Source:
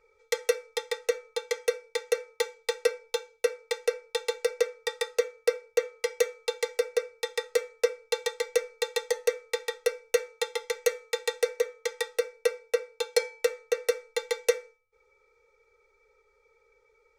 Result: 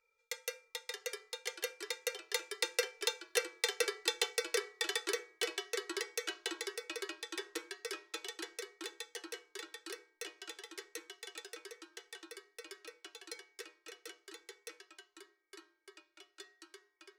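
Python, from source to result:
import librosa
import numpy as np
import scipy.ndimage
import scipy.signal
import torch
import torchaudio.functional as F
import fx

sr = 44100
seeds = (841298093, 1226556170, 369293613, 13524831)

y = fx.doppler_pass(x, sr, speed_mps=9, closest_m=9.3, pass_at_s=3.6)
y = fx.tilt_shelf(y, sr, db=-8.5, hz=850.0)
y = fx.echo_pitch(y, sr, ms=565, semitones=-3, count=2, db_per_echo=-6.0)
y = F.gain(torch.from_numpy(y), -5.5).numpy()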